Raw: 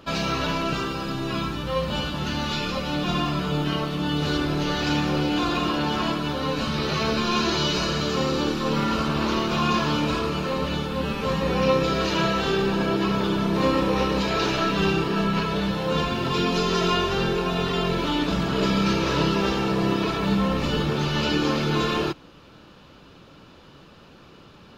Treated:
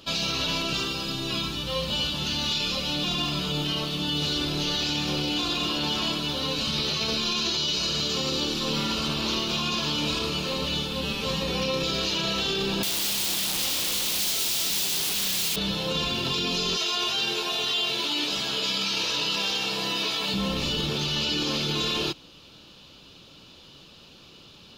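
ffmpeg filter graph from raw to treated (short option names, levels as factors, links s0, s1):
-filter_complex "[0:a]asettb=1/sr,asplit=3[s0][s1][s2];[s0]atrim=end=12.834[s3];[s1]atrim=start=12.83:end=15.56,asetpts=PTS-STARTPTS,afade=t=in:d=0.004:c=qsin,afade=t=out:st=2.726:d=0.004:c=qsin,highpass=f=60:p=1,asplit=2[s4][s5];[s5]highpass=f=720:p=1,volume=39.8,asoftclip=type=tanh:threshold=0.282[s6];[s4][s6]amix=inputs=2:normalize=0,lowpass=f=4300:p=1,volume=0.501,aeval=exprs='0.282*sin(PI/2*7.08*val(0)/0.282)':c=same[s7];[s2]atrim=start=15.556[s8];[s3][s7]acrossfade=d=0.004:c1=hsin:c2=qsin[s9];[s9][s8]acrossfade=d=0.004:c1=qsin:c2=hsin,asettb=1/sr,asplit=3[s10][s11][s12];[s10]atrim=end=16.764[s13];[s11]atrim=start=16.76:end=20.34,asetpts=PTS-STARTPTS,afade=t=in:d=0.004:c=qsin,afade=t=out:st=3.576:d=0.004:c=qsin,highpass=f=650:p=1,asplit=2[s14][s15];[s15]adelay=14,volume=0.75[s16];[s14][s16]amix=inputs=2:normalize=0,atrim=end_sample=157878[s17];[s12]atrim=start=20.336[s18];[s13][s17]acrossfade=d=0.004:c1=hsin:c2=qsin[s19];[s19][s18]acrossfade=d=0.004:c1=qsin:c2=hsin,highshelf=f=2400:t=q:w=1.5:g=10,alimiter=limit=0.211:level=0:latency=1:release=20,volume=0.596"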